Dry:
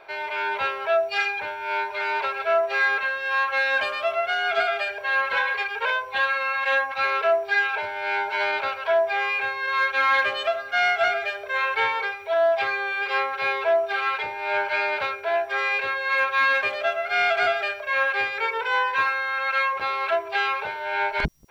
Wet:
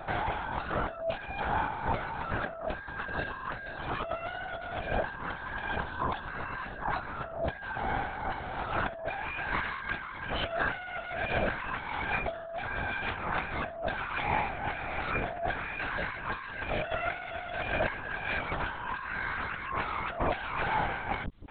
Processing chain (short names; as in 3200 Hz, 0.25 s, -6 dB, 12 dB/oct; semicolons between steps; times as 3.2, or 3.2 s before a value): LPC vocoder at 8 kHz whisper; negative-ratio compressor -34 dBFS, ratio -1; bell 2400 Hz -12 dB 0.79 oct, from 8.86 s -3 dB